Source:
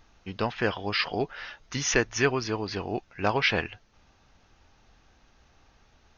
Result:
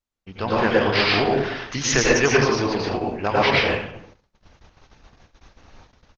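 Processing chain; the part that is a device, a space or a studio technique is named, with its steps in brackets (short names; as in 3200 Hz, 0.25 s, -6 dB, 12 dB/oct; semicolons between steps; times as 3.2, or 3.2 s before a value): 1.84–2.52 high shelf 4400 Hz +3.5 dB; speakerphone in a meeting room (reverb RT60 0.80 s, pre-delay 90 ms, DRR -4 dB; speakerphone echo 0.16 s, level -24 dB; AGC gain up to 10 dB; gate -43 dBFS, range -30 dB; gain -3 dB; Opus 12 kbps 48000 Hz)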